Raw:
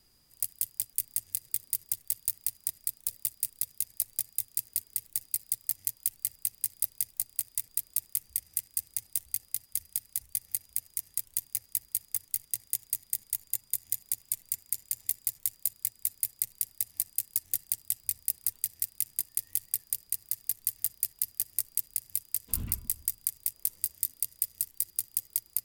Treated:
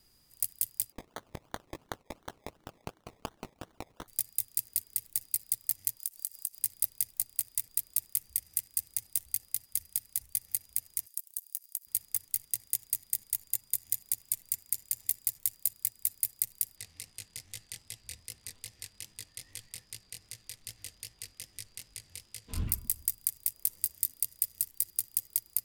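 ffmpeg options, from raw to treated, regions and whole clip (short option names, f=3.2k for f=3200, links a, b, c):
-filter_complex "[0:a]asettb=1/sr,asplit=3[a][b][c];[a]atrim=end=0.924[d];[b]atrim=start=0.92:end=4.08,asetpts=PTS-STARTPTS,afade=t=in:d=0.004:c=qsin,afade=t=out:st=3.156:d=0.004:c=qsin,highpass=140,lowpass=6.5k,acrusher=samples=24:mix=1:aa=0.000001:lfo=1:lforange=14.4:lforate=2.8[e];[c]atrim=start=4.076[f];[d][e]acrossfade=d=0.004:c1=hsin:c2=qsin[g];[g][f]acrossfade=d=0.004:c1=qsin:c2=hsin,asettb=1/sr,asplit=3[h][i][j];[h]atrim=end=5.994[k];[i]atrim=start=5.99:end=6.59,asetpts=PTS-STARTPTS,afade=t=in:d=0.004:c=qsin,afade=t=out:st=0.596:d=0.004:c=qsin,bass=f=250:g=-11,treble=f=4k:g=10,acompressor=threshold=-32dB:ratio=6:attack=3.2:release=140:knee=1:detection=peak[l];[j]atrim=start=6.586[m];[k][l]acrossfade=d=0.004:c1=hsin:c2=qsin[n];[n][m]acrossfade=d=0.004:c1=qsin:c2=hsin,asettb=1/sr,asplit=3[o][p][q];[o]atrim=end=11.064[r];[p]atrim=start=11.06:end=11.87,asetpts=PTS-STARTPTS,afade=t=in:d=0.004:c=qsin,afade=t=out:st=0.806:d=0.004:c=qsin,aderivative,acompressor=threshold=-33dB:ratio=4:attack=3.2:release=140:knee=1:detection=peak[s];[q]atrim=start=11.866[t];[r][s]acrossfade=d=0.004:c1=hsin:c2=qsin[u];[u][t]acrossfade=d=0.004:c1=qsin:c2=hsin,asettb=1/sr,asplit=3[v][w][x];[v]atrim=end=16.764[y];[w]atrim=start=16.76:end=22.68,asetpts=PTS-STARTPTS,afade=t=in:d=0.004:c=qsin,afade=t=out:st=5.916:d=0.004:c=qsin,lowpass=4.6k,acontrast=66,flanger=delay=17.5:depth=7:speed=2.5[z];[x]atrim=start=22.676[aa];[y][z]acrossfade=d=0.004:c1=hsin:c2=qsin[ab];[ab][aa]acrossfade=d=0.004:c1=qsin:c2=hsin"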